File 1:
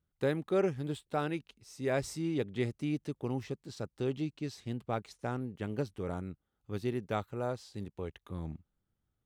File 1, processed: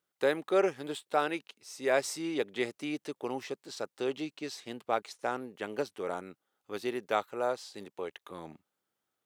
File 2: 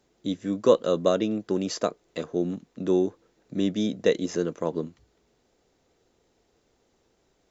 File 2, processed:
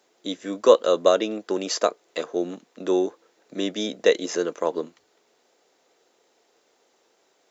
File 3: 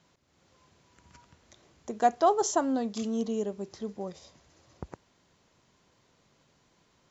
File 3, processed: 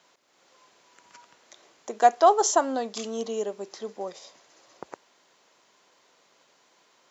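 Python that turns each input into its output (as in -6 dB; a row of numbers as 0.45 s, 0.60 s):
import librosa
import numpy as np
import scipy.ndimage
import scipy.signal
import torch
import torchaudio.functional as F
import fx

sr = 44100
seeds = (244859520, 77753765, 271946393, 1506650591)

y = scipy.signal.sosfilt(scipy.signal.butter(2, 460.0, 'highpass', fs=sr, output='sos'), x)
y = y * 10.0 ** (6.5 / 20.0)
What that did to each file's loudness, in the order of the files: +2.5 LU, +3.0 LU, +4.5 LU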